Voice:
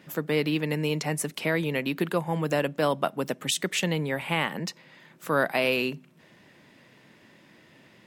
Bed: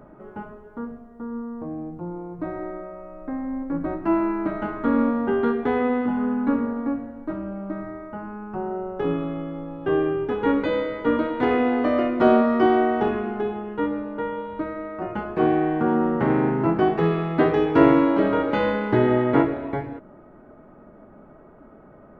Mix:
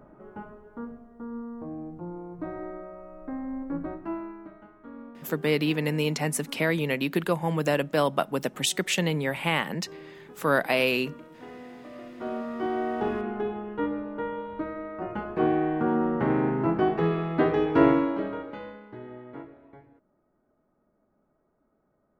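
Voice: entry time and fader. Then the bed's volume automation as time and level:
5.15 s, +1.0 dB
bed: 3.76 s -5 dB
4.68 s -23.5 dB
11.88 s -23.5 dB
13.16 s -4 dB
17.88 s -4 dB
18.91 s -23.5 dB

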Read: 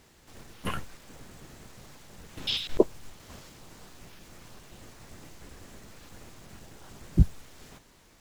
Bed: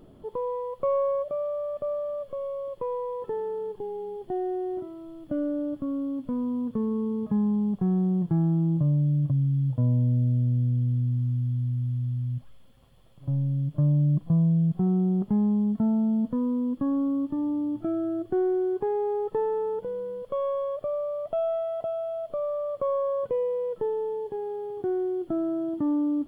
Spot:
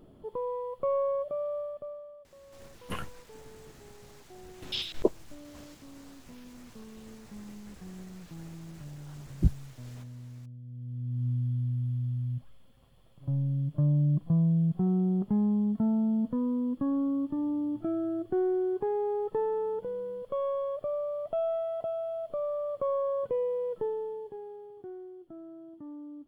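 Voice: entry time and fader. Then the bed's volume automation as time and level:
2.25 s, -4.0 dB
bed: 1.58 s -3.5 dB
2.30 s -21.5 dB
10.62 s -21.5 dB
11.27 s -3 dB
23.78 s -3 dB
25.18 s -18.5 dB

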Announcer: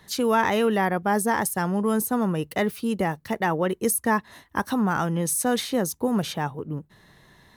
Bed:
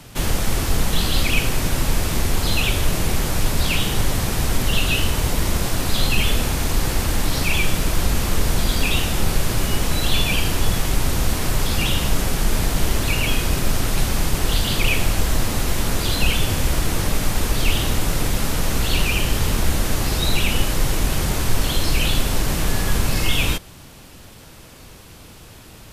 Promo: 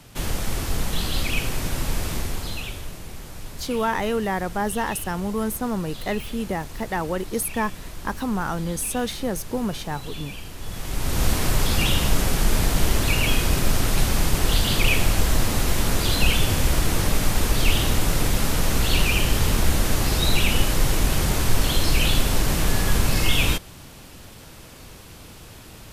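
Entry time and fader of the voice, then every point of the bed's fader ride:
3.50 s, -2.5 dB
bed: 2.11 s -5.5 dB
3.00 s -17 dB
10.56 s -17 dB
11.24 s -0.5 dB

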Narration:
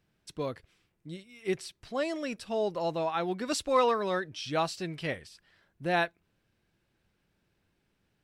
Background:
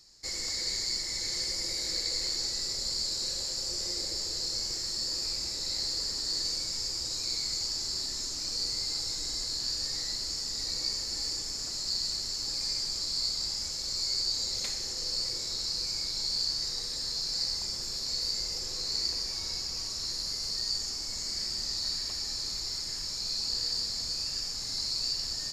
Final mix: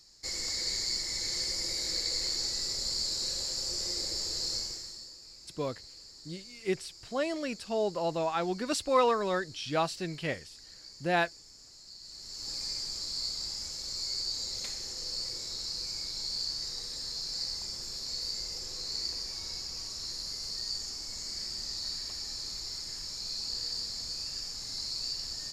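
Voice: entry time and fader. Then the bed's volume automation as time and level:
5.20 s, 0.0 dB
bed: 4.55 s -0.5 dB
5.19 s -18 dB
11.99 s -18 dB
12.50 s -4 dB

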